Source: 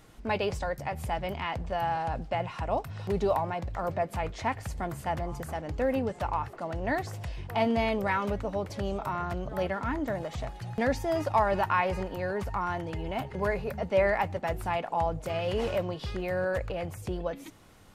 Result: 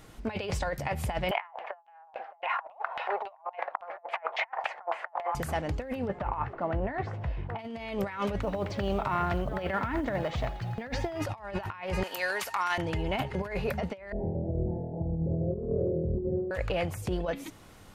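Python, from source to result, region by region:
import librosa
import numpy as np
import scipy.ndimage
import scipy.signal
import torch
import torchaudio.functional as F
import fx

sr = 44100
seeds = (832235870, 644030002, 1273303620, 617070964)

y = fx.chain(x, sr, fx.highpass(hz=590.0, slope=24),
    fx.peak_eq(hz=780.0, db=10.5, octaves=1.2),
    fx.filter_lfo_lowpass(shape='saw_down', hz=3.6, low_hz=840.0, high_hz=2900.0, q=2.7), at=(1.31, 5.35))
y = fx.chain(y, sr, fx.lowpass(hz=1800.0, slope=12),
    fx.doubler(ms=15.0, db=-13), at=(6.07, 7.59))
y = fx.chain(y, sr, fx.lowpass(hz=4400.0, slope=12),
    fx.echo_single(ms=86, db=-16.5),
    fx.quant_companded(bits=8), at=(8.41, 11.22))
y = fx.chain(y, sr, fx.highpass(hz=610.0, slope=6),
    fx.tilt_eq(slope=3.5), at=(12.03, 12.78))
y = fx.chain(y, sr, fx.cheby2_lowpass(hz=1100.0, order=4, stop_db=50),
    fx.room_flutter(wall_m=4.2, rt60_s=1.2), at=(14.12, 16.51))
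y = fx.dynamic_eq(y, sr, hz=2600.0, q=0.78, threshold_db=-46.0, ratio=4.0, max_db=5)
y = fx.over_compress(y, sr, threshold_db=-31.0, ratio=-0.5)
y = y * 10.0 ** (-1.5 / 20.0)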